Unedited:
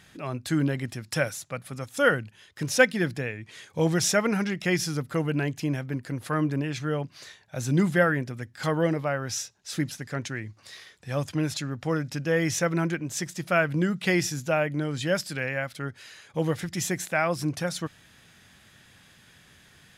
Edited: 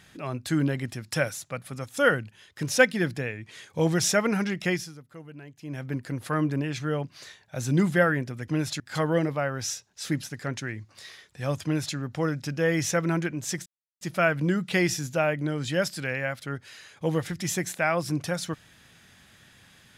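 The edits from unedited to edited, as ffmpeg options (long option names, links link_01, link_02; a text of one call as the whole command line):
ffmpeg -i in.wav -filter_complex "[0:a]asplit=6[link_01][link_02][link_03][link_04][link_05][link_06];[link_01]atrim=end=5.01,asetpts=PTS-STARTPTS,afade=type=out:start_time=4.68:duration=0.33:curve=qua:silence=0.133352[link_07];[link_02]atrim=start=5.01:end=5.53,asetpts=PTS-STARTPTS,volume=-17.5dB[link_08];[link_03]atrim=start=5.53:end=8.482,asetpts=PTS-STARTPTS,afade=type=in:duration=0.33:curve=qua:silence=0.133352[link_09];[link_04]atrim=start=11.318:end=11.642[link_10];[link_05]atrim=start=8.478:end=13.34,asetpts=PTS-STARTPTS,afade=type=out:start_time=4.858:duration=0.004:curve=hsin,apad=pad_dur=0.35[link_11];[link_06]atrim=start=13.34,asetpts=PTS-STARTPTS,afade=type=in:duration=0.004:curve=hsin[link_12];[link_07][link_08][link_09]concat=n=3:v=0:a=1[link_13];[link_13][link_10]acrossfade=duration=0.004:curve1=hsin:curve2=hsin[link_14];[link_11][link_12]concat=n=2:v=0:a=1[link_15];[link_14][link_15]acrossfade=duration=0.004:curve1=hsin:curve2=hsin" out.wav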